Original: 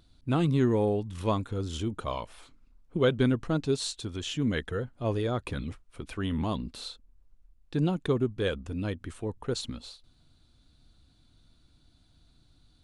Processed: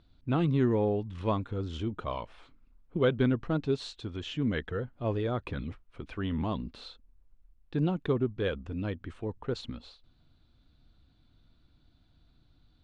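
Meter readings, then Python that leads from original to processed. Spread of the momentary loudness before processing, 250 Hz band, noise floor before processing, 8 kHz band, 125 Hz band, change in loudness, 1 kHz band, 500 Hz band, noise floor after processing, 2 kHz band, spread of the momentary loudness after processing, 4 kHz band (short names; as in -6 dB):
14 LU, -1.5 dB, -63 dBFS, under -15 dB, -1.5 dB, -1.5 dB, -1.5 dB, -1.5 dB, -65 dBFS, -2.0 dB, 14 LU, -5.5 dB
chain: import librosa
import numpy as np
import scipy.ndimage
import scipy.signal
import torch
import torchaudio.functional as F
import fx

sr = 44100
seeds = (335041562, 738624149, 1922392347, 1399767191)

y = scipy.signal.sosfilt(scipy.signal.butter(2, 3300.0, 'lowpass', fs=sr, output='sos'), x)
y = F.gain(torch.from_numpy(y), -1.5).numpy()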